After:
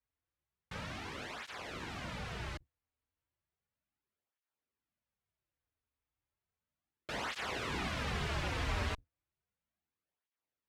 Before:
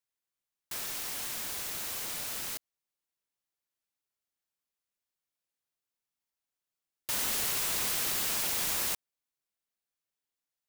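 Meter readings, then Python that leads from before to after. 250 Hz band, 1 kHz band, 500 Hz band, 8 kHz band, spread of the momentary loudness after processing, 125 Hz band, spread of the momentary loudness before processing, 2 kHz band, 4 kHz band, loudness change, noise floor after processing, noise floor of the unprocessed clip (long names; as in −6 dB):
+4.5 dB, +1.0 dB, +2.0 dB, −20.0 dB, 9 LU, +11.0 dB, 9 LU, −1.0 dB, −7.5 dB, −9.0 dB, below −85 dBFS, below −85 dBFS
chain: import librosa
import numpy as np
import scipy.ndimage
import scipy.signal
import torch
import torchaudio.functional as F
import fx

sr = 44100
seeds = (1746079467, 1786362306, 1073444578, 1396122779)

y = fx.octave_divider(x, sr, octaves=2, level_db=3.0)
y = scipy.signal.sosfilt(scipy.signal.butter(2, 2400.0, 'lowpass', fs=sr, output='sos'), y)
y = fx.low_shelf(y, sr, hz=190.0, db=7.5)
y = fx.flanger_cancel(y, sr, hz=0.34, depth_ms=6.0)
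y = F.gain(torch.from_numpy(y), 4.0).numpy()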